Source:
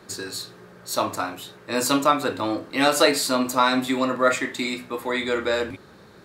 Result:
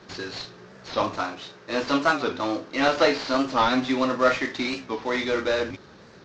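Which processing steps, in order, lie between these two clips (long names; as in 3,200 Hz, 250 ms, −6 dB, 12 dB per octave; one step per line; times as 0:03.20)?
variable-slope delta modulation 32 kbit/s
0:01.23–0:03.34: low-shelf EQ 150 Hz −7 dB
wow of a warped record 45 rpm, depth 160 cents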